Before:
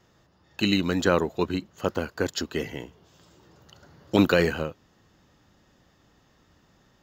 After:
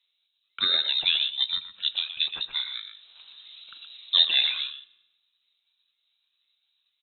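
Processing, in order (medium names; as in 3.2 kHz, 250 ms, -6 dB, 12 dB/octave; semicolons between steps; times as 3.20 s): sawtooth pitch modulation -5.5 st, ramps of 494 ms; distance through air 390 m; gate with hold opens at -51 dBFS; speakerphone echo 120 ms, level -8 dB; frequency inversion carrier 3.9 kHz; reverberation RT60 0.85 s, pre-delay 3 ms, DRR 16.5 dB; tape noise reduction on one side only encoder only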